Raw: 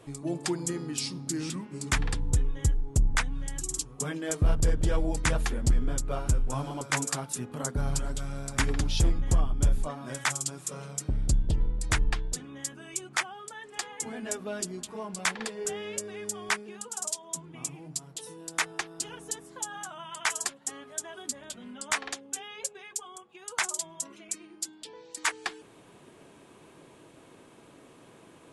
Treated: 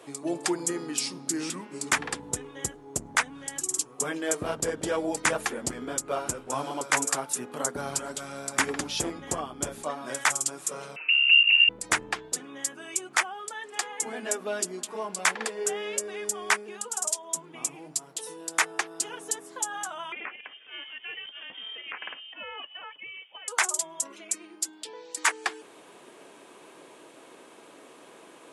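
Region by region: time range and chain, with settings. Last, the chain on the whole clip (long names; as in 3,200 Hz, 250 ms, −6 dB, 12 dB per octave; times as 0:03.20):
0:10.96–0:11.69: voice inversion scrambler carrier 2,800 Hz + high-pass filter 170 Hz 24 dB per octave
0:20.12–0:23.48: downward compressor 12 to 1, threshold −36 dBFS + voice inversion scrambler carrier 3,400 Hz
whole clip: high-pass filter 350 Hz 12 dB per octave; dynamic equaliser 4,000 Hz, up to −5 dB, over −45 dBFS, Q 1.3; level +5.5 dB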